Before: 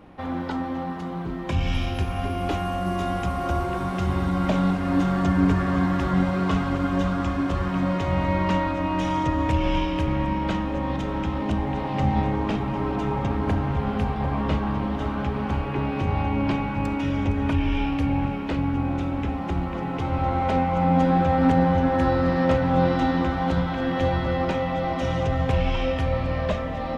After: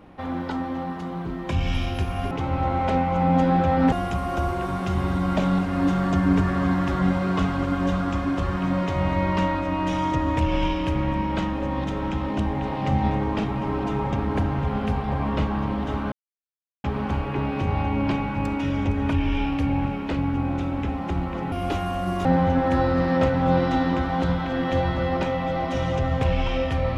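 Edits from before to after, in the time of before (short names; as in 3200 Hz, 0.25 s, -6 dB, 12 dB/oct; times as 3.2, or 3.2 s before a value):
2.31–3.04 swap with 19.92–21.53
15.24 insert silence 0.72 s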